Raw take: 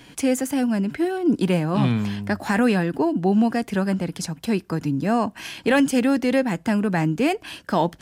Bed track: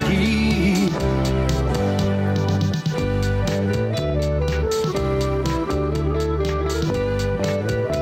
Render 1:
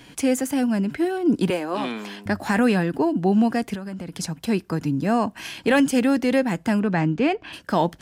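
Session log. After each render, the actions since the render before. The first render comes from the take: 1.5–2.26 HPF 290 Hz 24 dB/oct; 3.74–4.18 compressor 16:1, threshold -28 dBFS; 6.79–7.52 LPF 5800 Hz -> 3000 Hz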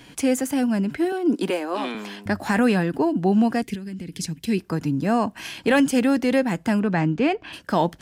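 1.12–1.95 HPF 230 Hz 24 dB/oct; 3.62–4.58 band shelf 880 Hz -14 dB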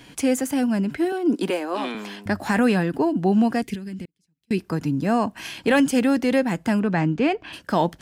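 4.05–4.51 flipped gate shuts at -33 dBFS, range -40 dB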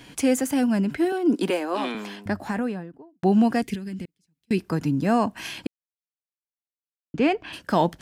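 1.88–3.23 studio fade out; 5.67–7.14 mute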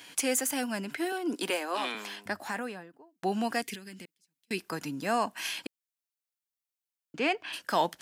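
HPF 1100 Hz 6 dB/oct; high shelf 7400 Hz +5 dB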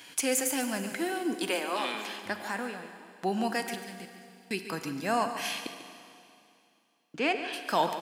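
echo 0.143 s -12 dB; Schroeder reverb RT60 2.6 s, combs from 33 ms, DRR 9 dB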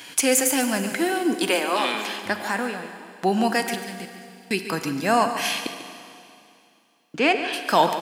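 gain +8.5 dB

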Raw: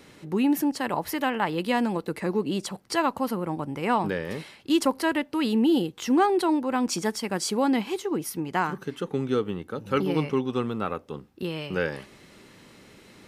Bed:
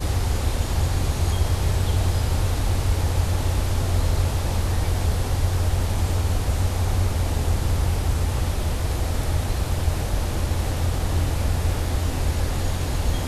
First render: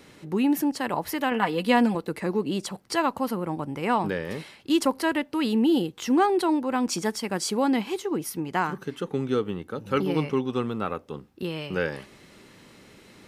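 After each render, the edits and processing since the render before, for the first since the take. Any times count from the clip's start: 1.31–1.95 comb 4.1 ms, depth 72%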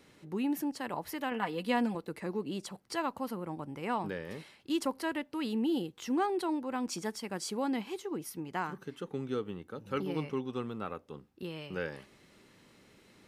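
gain -9.5 dB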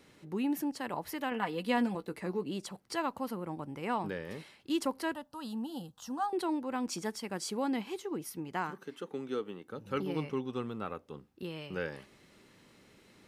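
1.76–2.44 doubler 16 ms -11 dB; 5.14–6.33 fixed phaser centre 920 Hz, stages 4; 8.71–9.68 HPF 240 Hz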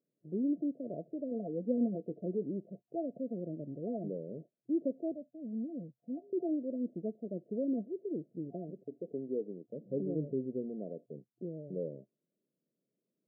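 gate -48 dBFS, range -25 dB; FFT band-pass 120–700 Hz

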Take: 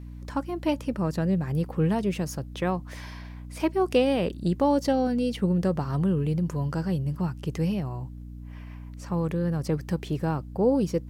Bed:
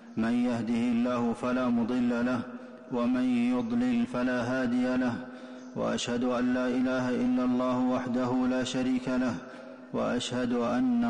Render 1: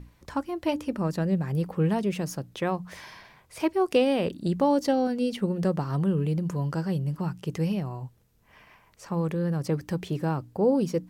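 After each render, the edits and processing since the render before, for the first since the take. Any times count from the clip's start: notches 60/120/180/240/300 Hz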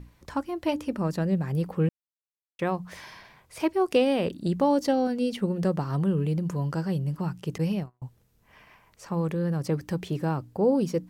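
1.89–2.59 mute; 7.58–8.02 gate -31 dBFS, range -42 dB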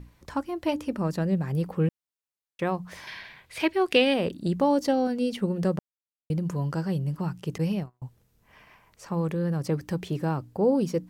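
3.07–4.14 band shelf 2600 Hz +9 dB; 5.79–6.3 mute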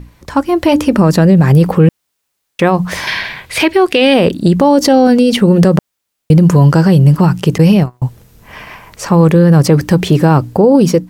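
AGC gain up to 10.5 dB; maximiser +12.5 dB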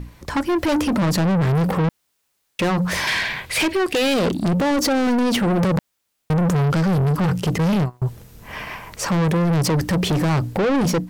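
soft clip -16.5 dBFS, distortion -6 dB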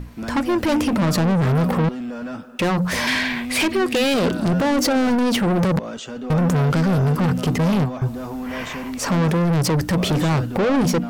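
add bed -2 dB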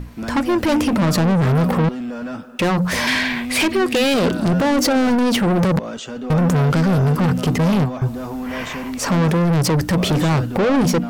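gain +2 dB

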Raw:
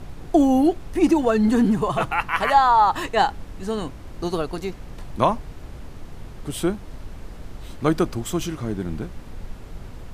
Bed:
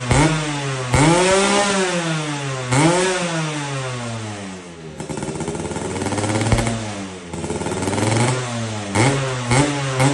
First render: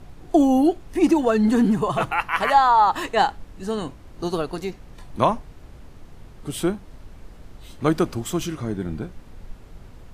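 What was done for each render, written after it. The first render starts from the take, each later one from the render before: noise print and reduce 6 dB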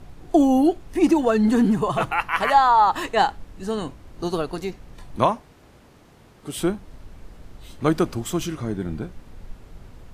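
5.26–6.57 HPF 210 Hz 6 dB/oct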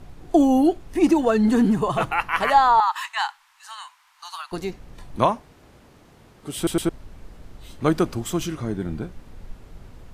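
2.8–4.52 elliptic high-pass 930 Hz, stop band 50 dB; 6.56 stutter in place 0.11 s, 3 plays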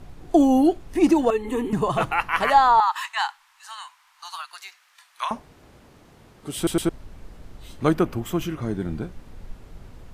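1.3–1.73 fixed phaser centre 1000 Hz, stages 8; 4.45–5.31 HPF 1200 Hz 24 dB/oct; 7.94–8.62 band shelf 6000 Hz -8 dB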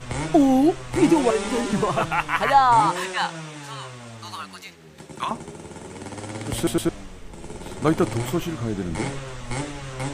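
add bed -13.5 dB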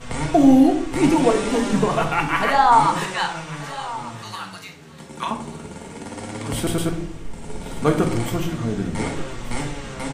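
echo 1.188 s -16.5 dB; shoebox room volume 810 m³, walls furnished, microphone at 1.7 m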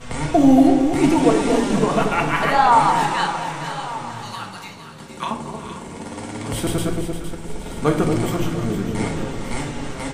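reverse delay 0.237 s, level -14 dB; echo with dull and thin repeats by turns 0.23 s, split 880 Hz, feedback 57%, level -5 dB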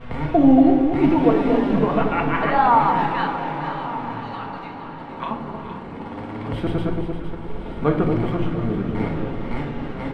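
air absorption 400 m; diffused feedback echo 1.006 s, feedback 59%, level -15 dB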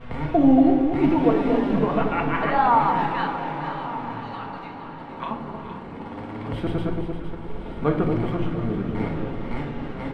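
gain -2.5 dB

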